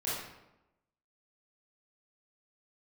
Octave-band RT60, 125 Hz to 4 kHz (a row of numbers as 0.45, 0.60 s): 0.95, 1.0, 0.95, 0.90, 0.75, 0.65 s